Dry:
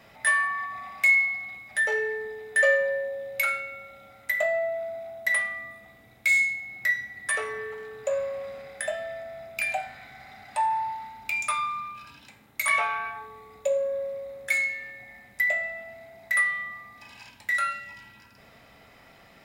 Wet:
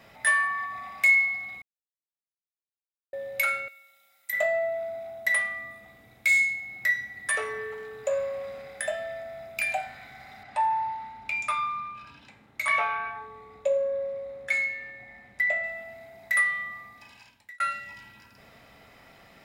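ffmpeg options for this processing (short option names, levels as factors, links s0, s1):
-filter_complex "[0:a]asettb=1/sr,asplit=3[s0][s1][s2];[s0]atrim=end=3.684[s3];[s1]atrim=start=3.68:end=4.33,asetpts=PTS-STARTPTS,afade=t=in:d=0.004:c=qsin,afade=t=out:st=0.646:d=0.004:c=qsin,aderivative[s4];[s2]atrim=start=4.326[s5];[s3][s4]acrossfade=d=0.004:c1=hsin:c2=qsin[s6];[s6][s5]acrossfade=d=0.004:c1=qsin:c2=hsin,asettb=1/sr,asplit=3[s7][s8][s9];[s7]atrim=end=10.434[s10];[s8]atrim=start=10.43:end=15.64,asetpts=PTS-STARTPTS,afade=t=in:d=0.004:c=qsin,afade=t=out:st=5.206:d=0.004:c=qsin,aemphasis=mode=reproduction:type=50fm[s11];[s9]atrim=start=15.636[s12];[s10][s11]acrossfade=d=0.004:c1=hsin:c2=qsin[s13];[s13][s12]acrossfade=d=0.004:c1=qsin:c2=hsin,asplit=4[s14][s15][s16][s17];[s14]atrim=end=1.62,asetpts=PTS-STARTPTS,afade=t=out:st=1.616:d=0.004:c=hsin[s18];[s15]atrim=start=1.62:end=3.13,asetpts=PTS-STARTPTS,volume=0[s19];[s16]atrim=start=3.13:end=17.6,asetpts=PTS-STARTPTS,afade=t=in:d=0.004:c=hsin,afade=t=out:st=13.71:d=0.76[s20];[s17]atrim=start=17.6,asetpts=PTS-STARTPTS,afade=t=in:d=0.004:c=hsin[s21];[s18][s19][s20][s21]concat=n=4:v=0:a=1"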